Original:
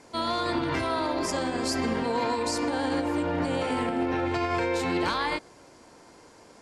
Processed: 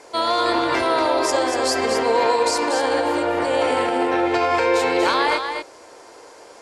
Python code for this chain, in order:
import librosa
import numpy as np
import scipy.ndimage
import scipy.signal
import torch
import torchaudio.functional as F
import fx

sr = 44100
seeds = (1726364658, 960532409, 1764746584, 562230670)

p1 = fx.low_shelf_res(x, sr, hz=300.0, db=-12.0, q=1.5)
p2 = p1 + fx.echo_single(p1, sr, ms=237, db=-6.5, dry=0)
y = F.gain(torch.from_numpy(p2), 7.5).numpy()